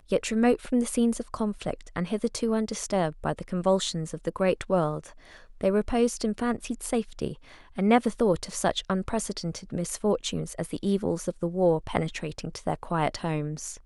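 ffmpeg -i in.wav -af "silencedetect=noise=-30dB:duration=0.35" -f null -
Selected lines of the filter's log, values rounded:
silence_start: 4.99
silence_end: 5.61 | silence_duration: 0.62
silence_start: 7.32
silence_end: 7.78 | silence_duration: 0.46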